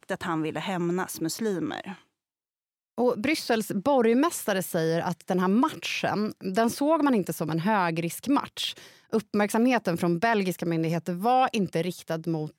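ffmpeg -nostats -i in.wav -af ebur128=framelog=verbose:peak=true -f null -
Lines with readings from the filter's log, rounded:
Integrated loudness:
  I:         -26.4 LUFS
  Threshold: -36.6 LUFS
Loudness range:
  LRA:         3.9 LU
  Threshold: -46.5 LUFS
  LRA low:   -29.4 LUFS
  LRA high:  -25.5 LUFS
True peak:
  Peak:      -11.6 dBFS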